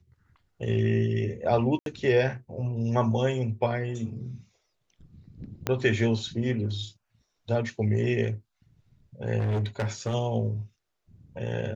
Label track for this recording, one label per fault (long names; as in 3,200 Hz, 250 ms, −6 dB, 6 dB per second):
1.790000	1.860000	drop-out 72 ms
5.670000	5.670000	click −11 dBFS
9.380000	10.150000	clipping −23.5 dBFS